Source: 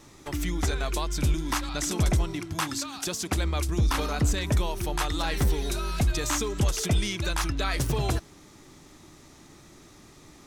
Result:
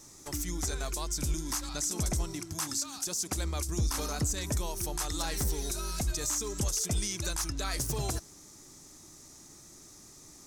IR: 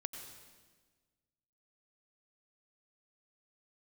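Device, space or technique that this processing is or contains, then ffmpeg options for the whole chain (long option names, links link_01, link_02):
over-bright horn tweeter: -af "highshelf=frequency=4400:width_type=q:width=1.5:gain=10.5,alimiter=limit=-15.5dB:level=0:latency=1:release=67,volume=-6dB"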